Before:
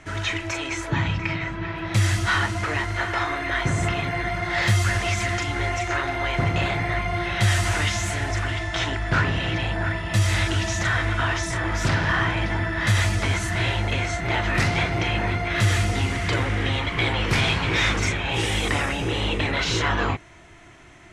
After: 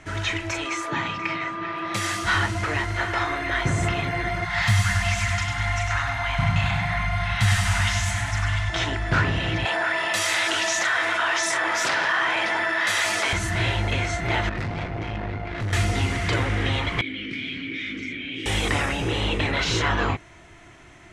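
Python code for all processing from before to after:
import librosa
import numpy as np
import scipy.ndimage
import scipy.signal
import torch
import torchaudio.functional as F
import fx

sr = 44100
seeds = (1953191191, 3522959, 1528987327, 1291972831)

y = fx.highpass(x, sr, hz=250.0, slope=12, at=(0.65, 2.24), fade=0.02)
y = fx.dmg_tone(y, sr, hz=1200.0, level_db=-31.0, at=(0.65, 2.24), fade=0.02)
y = fx.chain(y, sr, fx.cheby1_bandstop(low_hz=200.0, high_hz=820.0, order=2),
    fx.clip_hard(threshold_db=-12.5),
    fx.echo_feedback(ms=99, feedback_pct=48, wet_db=-6), at=(4.45, 8.7))
y = fx.chain(y, sr, fx.highpass(hz=570.0, slope=12),
    fx.env_flatten(amount_pct=70), at=(9.65, 13.33))
y = fx.chain(y, sr, fx.lowpass(hz=1100.0, slope=6),
    fx.tube_stage(drive_db=24.0, bias=0.7), at=(14.49, 15.73))
y = fx.chain(y, sr, fx.vowel_filter(vowel='i'),
    fx.env_flatten(amount_pct=70), at=(17.01, 18.46))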